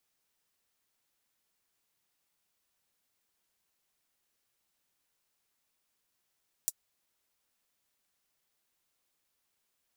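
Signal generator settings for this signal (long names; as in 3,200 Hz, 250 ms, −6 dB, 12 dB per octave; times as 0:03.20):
closed synth hi-hat, high-pass 7,000 Hz, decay 0.05 s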